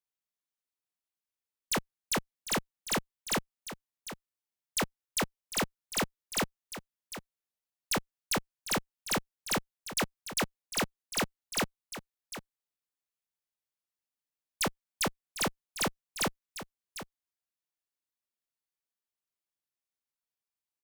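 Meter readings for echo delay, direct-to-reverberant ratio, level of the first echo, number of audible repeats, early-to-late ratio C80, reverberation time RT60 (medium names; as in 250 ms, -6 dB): 751 ms, no reverb, -12.0 dB, 1, no reverb, no reverb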